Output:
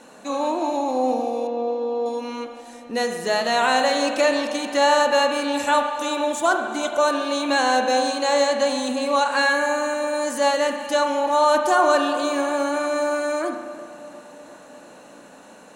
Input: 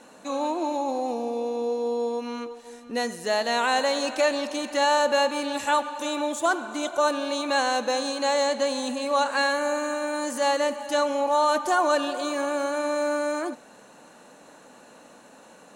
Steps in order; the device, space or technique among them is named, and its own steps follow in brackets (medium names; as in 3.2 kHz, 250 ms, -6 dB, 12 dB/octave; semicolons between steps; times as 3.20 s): dub delay into a spring reverb (filtered feedback delay 351 ms, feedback 69%, low-pass 2.1 kHz, level -17 dB; spring tank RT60 1.3 s, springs 35 ms, chirp 60 ms, DRR 5 dB); 1.47–2.06 s: distance through air 210 m; trim +3 dB